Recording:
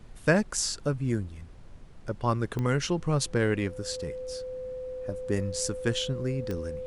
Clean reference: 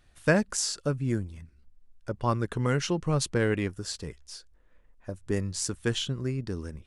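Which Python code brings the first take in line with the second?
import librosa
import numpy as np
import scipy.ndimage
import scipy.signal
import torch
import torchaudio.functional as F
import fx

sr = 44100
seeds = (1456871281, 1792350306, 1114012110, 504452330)

y = fx.fix_declick_ar(x, sr, threshold=10.0)
y = fx.notch(y, sr, hz=510.0, q=30.0)
y = fx.noise_reduce(y, sr, print_start_s=1.46, print_end_s=1.96, reduce_db=12.0)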